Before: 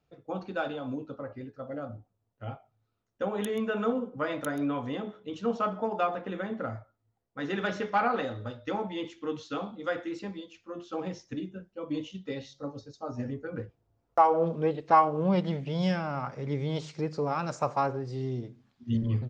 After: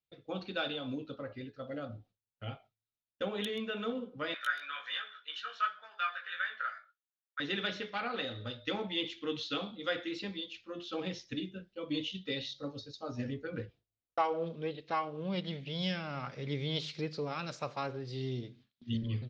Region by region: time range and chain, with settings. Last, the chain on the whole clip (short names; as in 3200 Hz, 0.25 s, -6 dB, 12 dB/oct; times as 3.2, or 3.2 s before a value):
4.34–7.4 resonant high-pass 1500 Hz, resonance Q 8 + chorus 1.4 Hz, delay 16 ms, depth 4.1 ms + comb 1.7 ms, depth 32%
whole clip: vocal rider within 4 dB 0.5 s; EQ curve 520 Hz 0 dB, 880 Hz -5 dB, 3800 Hz +15 dB, 7600 Hz -3 dB; gate with hold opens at -44 dBFS; gain -7 dB